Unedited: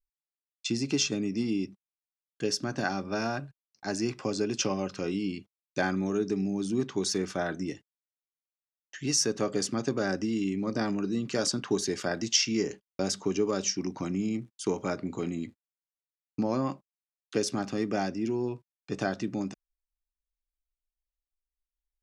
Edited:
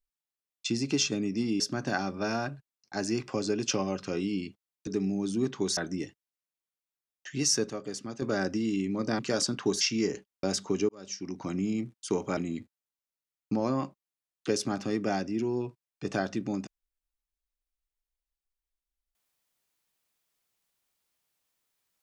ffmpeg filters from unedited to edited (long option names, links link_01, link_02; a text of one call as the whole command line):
ffmpeg -i in.wav -filter_complex "[0:a]asplit=10[link_01][link_02][link_03][link_04][link_05][link_06][link_07][link_08][link_09][link_10];[link_01]atrim=end=1.602[link_11];[link_02]atrim=start=2.508:end=5.782[link_12];[link_03]atrim=start=6.228:end=7.132[link_13];[link_04]atrim=start=7.448:end=9.382[link_14];[link_05]atrim=start=9.378:end=9.902,asetpts=PTS-STARTPTS,volume=-8dB[link_15];[link_06]atrim=start=9.898:end=10.872[link_16];[link_07]atrim=start=11.238:end=11.862[link_17];[link_08]atrim=start=12.368:end=13.45,asetpts=PTS-STARTPTS,afade=type=out:start_time=1.078:duration=0.004:curve=hsin[link_18];[link_09]atrim=start=13.45:end=14.932,asetpts=PTS-STARTPTS,afade=type=in:duration=0.68[link_19];[link_10]atrim=start=15.238[link_20];[link_11][link_12]acrossfade=duration=0.004:curve1=hsin:curve2=hsin[link_21];[link_21][link_13]acrossfade=duration=0.004:curve1=hsin:curve2=hsin[link_22];[link_22][link_14]acrossfade=duration=0.004:curve1=hsin:curve2=hsin[link_23];[link_23][link_15]acrossfade=duration=0.004:curve1=hsin:curve2=hsin[link_24];[link_24][link_16]acrossfade=duration=0.004:curve1=hsin:curve2=hsin[link_25];[link_25][link_17]acrossfade=duration=0.004:curve1=hsin:curve2=hsin[link_26];[link_18][link_19]concat=n=2:v=0:a=1[link_27];[link_26][link_27]acrossfade=duration=0.004:curve1=hsin:curve2=hsin[link_28];[link_28][link_20]acrossfade=duration=0.004:curve1=hsin:curve2=hsin" out.wav